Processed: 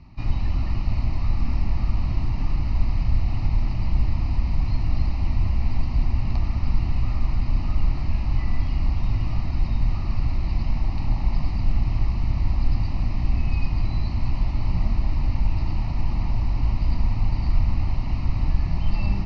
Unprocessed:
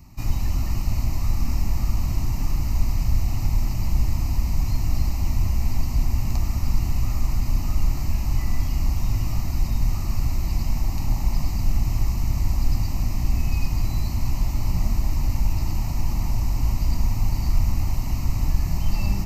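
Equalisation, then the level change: steep low-pass 4.4 kHz 36 dB/octave; 0.0 dB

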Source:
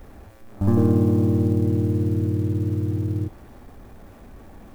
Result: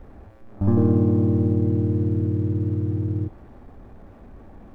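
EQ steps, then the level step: low-pass 1.3 kHz 6 dB/octave; 0.0 dB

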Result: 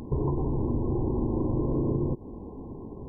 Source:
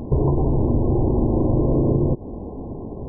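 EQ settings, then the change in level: bass shelf 410 Hz -11.5 dB; peaking EQ 650 Hz -13.5 dB 0.85 oct; +2.0 dB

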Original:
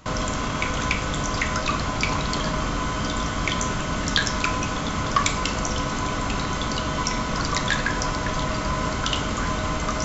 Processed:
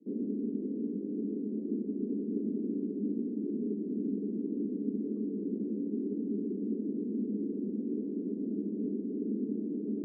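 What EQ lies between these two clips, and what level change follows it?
Chebyshev band-pass 200–430 Hz, order 4; 0.0 dB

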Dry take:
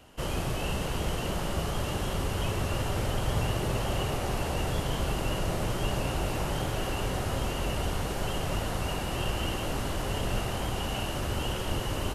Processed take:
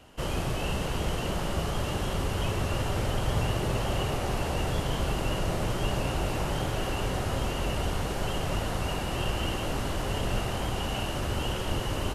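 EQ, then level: treble shelf 11 kHz -5.5 dB; +1.0 dB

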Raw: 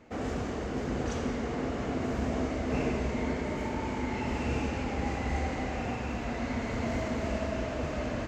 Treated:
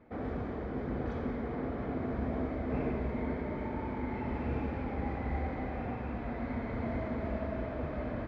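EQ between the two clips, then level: distance through air 420 m; band-stop 2.8 kHz, Q 6; -2.5 dB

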